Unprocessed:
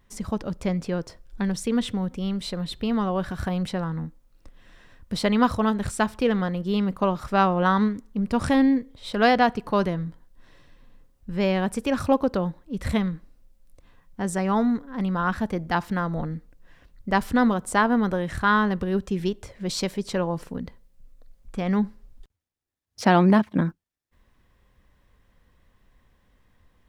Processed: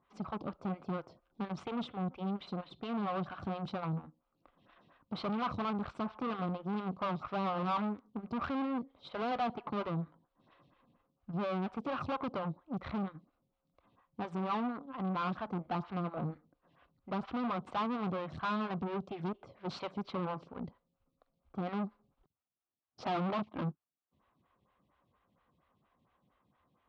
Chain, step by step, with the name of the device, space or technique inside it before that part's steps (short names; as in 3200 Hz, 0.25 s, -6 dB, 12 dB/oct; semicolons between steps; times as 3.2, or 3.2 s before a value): vibe pedal into a guitar amplifier (photocell phaser 4.3 Hz; tube stage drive 33 dB, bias 0.8; speaker cabinet 100–3900 Hz, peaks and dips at 150 Hz +4 dB, 460 Hz -4 dB, 740 Hz +4 dB, 1200 Hz +7 dB, 1800 Hz -8 dB)